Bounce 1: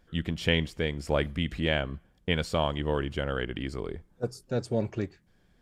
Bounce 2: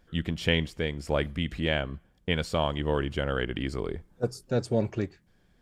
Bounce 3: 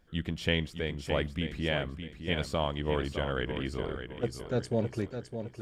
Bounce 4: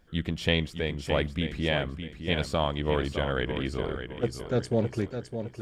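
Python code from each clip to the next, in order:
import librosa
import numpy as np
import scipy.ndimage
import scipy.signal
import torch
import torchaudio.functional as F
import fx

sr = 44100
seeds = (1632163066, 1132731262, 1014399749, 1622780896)

y1 = fx.rider(x, sr, range_db=10, speed_s=2.0)
y2 = fx.echo_feedback(y1, sr, ms=611, feedback_pct=38, wet_db=-8.5)
y2 = F.gain(torch.from_numpy(y2), -3.5).numpy()
y3 = fx.doppler_dist(y2, sr, depth_ms=0.12)
y3 = F.gain(torch.from_numpy(y3), 3.5).numpy()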